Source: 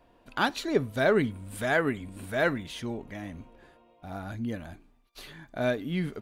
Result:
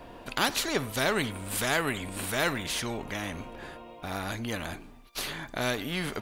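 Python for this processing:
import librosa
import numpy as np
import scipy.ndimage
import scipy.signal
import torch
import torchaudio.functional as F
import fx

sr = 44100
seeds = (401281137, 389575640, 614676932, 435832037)

y = fx.spectral_comp(x, sr, ratio=2.0)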